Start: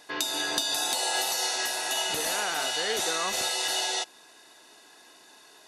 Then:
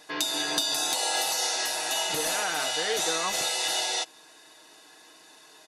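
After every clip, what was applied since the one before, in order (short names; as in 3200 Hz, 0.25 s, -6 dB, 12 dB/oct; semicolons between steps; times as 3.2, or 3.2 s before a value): comb 6.4 ms, depth 48%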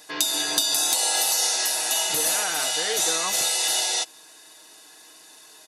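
high shelf 6000 Hz +12 dB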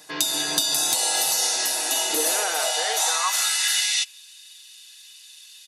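high-pass sweep 130 Hz -> 3000 Hz, 1.31–4.23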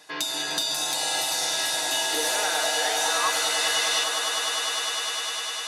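swelling echo 0.101 s, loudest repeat 8, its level -11.5 dB; overdrive pedal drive 7 dB, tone 2900 Hz, clips at -6.5 dBFS; gain -2.5 dB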